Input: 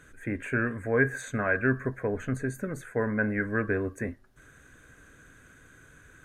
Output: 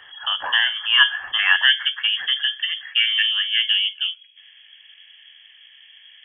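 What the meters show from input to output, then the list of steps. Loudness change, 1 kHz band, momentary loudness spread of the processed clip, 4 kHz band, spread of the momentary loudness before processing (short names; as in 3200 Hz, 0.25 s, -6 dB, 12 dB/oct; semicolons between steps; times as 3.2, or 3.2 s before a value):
+11.5 dB, +6.0 dB, 10 LU, n/a, 9 LU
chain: low-pass sweep 2300 Hz -> 900 Hz, 1.32–3.73; inverted band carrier 3300 Hz; bell 1400 Hz -5.5 dB 0.42 oct; gain +7.5 dB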